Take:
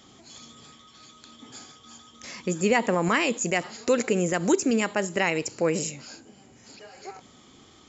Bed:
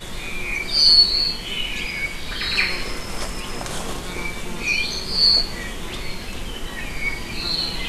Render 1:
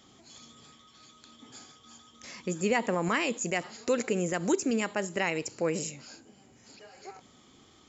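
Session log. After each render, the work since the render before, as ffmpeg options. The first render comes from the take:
ffmpeg -i in.wav -af "volume=-5dB" out.wav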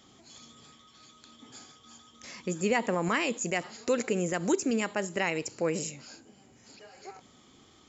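ffmpeg -i in.wav -af anull out.wav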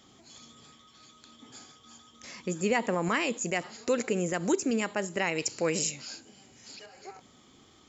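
ffmpeg -i in.wav -filter_complex "[0:a]asettb=1/sr,asplit=3[link_01][link_02][link_03];[link_01]atrim=end=5.384[link_04];[link_02]atrim=start=5.38:end=6.86,asetpts=PTS-STARTPTS,afade=type=in:duration=0.004:curve=qsin,afade=type=out:start_time=1.476:duration=0.004:curve=qsin,equalizer=frequency=4500:width_type=o:width=2.4:gain=8.5[link_05];[link_03]atrim=start=6.856[link_06];[link_04][link_05]acrossfade=duration=0.004:curve1=hsin:curve2=qsin[link_07];[link_07][link_06]acrossfade=duration=0.004:curve1=qsin:curve2=hsin" out.wav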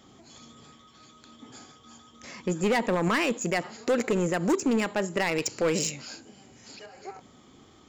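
ffmpeg -i in.wav -filter_complex "[0:a]asplit=2[link_01][link_02];[link_02]adynamicsmooth=sensitivity=5:basefreq=2400,volume=-2dB[link_03];[link_01][link_03]amix=inputs=2:normalize=0,asoftclip=type=hard:threshold=-19.5dB" out.wav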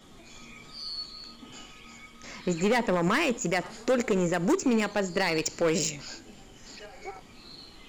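ffmpeg -i in.wav -i bed.wav -filter_complex "[1:a]volume=-24.5dB[link_01];[0:a][link_01]amix=inputs=2:normalize=0" out.wav

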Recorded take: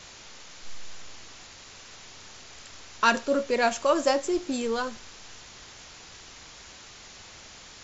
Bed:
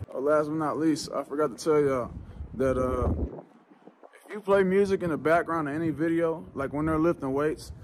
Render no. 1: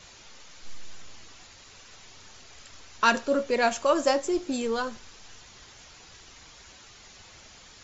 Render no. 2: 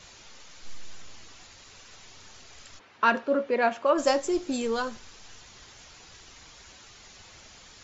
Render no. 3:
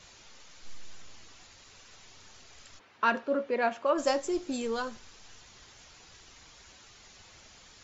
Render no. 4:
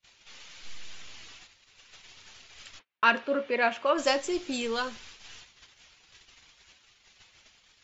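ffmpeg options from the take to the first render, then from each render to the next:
ffmpeg -i in.wav -af "afftdn=noise_reduction=6:noise_floor=-48" out.wav
ffmpeg -i in.wav -filter_complex "[0:a]asplit=3[link_01][link_02][link_03];[link_01]afade=type=out:start_time=2.78:duration=0.02[link_04];[link_02]highpass=170,lowpass=2400,afade=type=in:start_time=2.78:duration=0.02,afade=type=out:start_time=3.97:duration=0.02[link_05];[link_03]afade=type=in:start_time=3.97:duration=0.02[link_06];[link_04][link_05][link_06]amix=inputs=3:normalize=0" out.wav
ffmpeg -i in.wav -af "volume=-4dB" out.wav
ffmpeg -i in.wav -af "agate=range=-36dB:threshold=-52dB:ratio=16:detection=peak,equalizer=frequency=2800:width=0.8:gain=10" out.wav

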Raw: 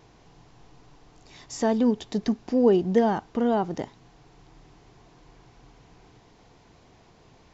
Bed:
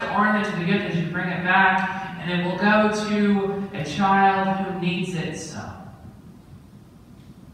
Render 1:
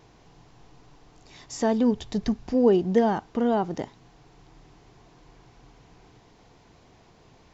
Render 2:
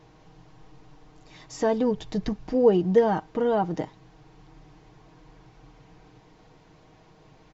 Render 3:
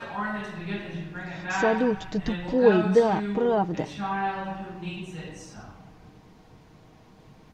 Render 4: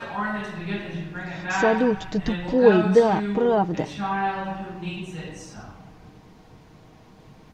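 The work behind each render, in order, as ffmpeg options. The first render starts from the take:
ffmpeg -i in.wav -filter_complex "[0:a]asplit=3[link_01][link_02][link_03];[link_01]afade=type=out:start_time=1.91:duration=0.02[link_04];[link_02]asubboost=boost=6:cutoff=130,afade=type=in:start_time=1.91:duration=0.02,afade=type=out:start_time=2.53:duration=0.02[link_05];[link_03]afade=type=in:start_time=2.53:duration=0.02[link_06];[link_04][link_05][link_06]amix=inputs=3:normalize=0" out.wav
ffmpeg -i in.wav -af "highshelf=frequency=4800:gain=-8,aecho=1:1:6.4:0.55" out.wav
ffmpeg -i in.wav -i bed.wav -filter_complex "[1:a]volume=-11dB[link_01];[0:a][link_01]amix=inputs=2:normalize=0" out.wav
ffmpeg -i in.wav -af "volume=3dB" out.wav

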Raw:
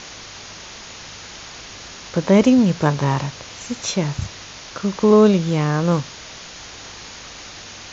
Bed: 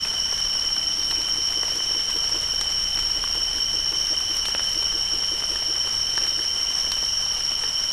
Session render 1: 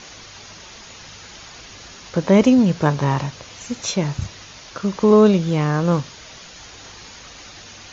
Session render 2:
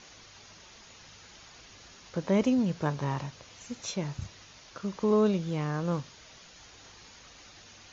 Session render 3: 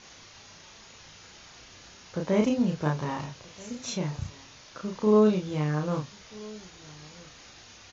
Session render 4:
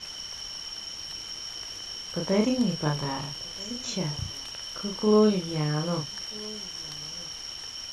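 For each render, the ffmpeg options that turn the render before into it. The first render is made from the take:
ffmpeg -i in.wav -af "afftdn=noise_reduction=6:noise_floor=-38" out.wav
ffmpeg -i in.wav -af "volume=-12dB" out.wav
ffmpeg -i in.wav -filter_complex "[0:a]asplit=2[link_01][link_02];[link_02]adelay=33,volume=-2.5dB[link_03];[link_01][link_03]amix=inputs=2:normalize=0,asplit=2[link_04][link_05];[link_05]adelay=1283,volume=-22dB,highshelf=frequency=4000:gain=-28.9[link_06];[link_04][link_06]amix=inputs=2:normalize=0" out.wav
ffmpeg -i in.wav -i bed.wav -filter_complex "[1:a]volume=-14.5dB[link_01];[0:a][link_01]amix=inputs=2:normalize=0" out.wav

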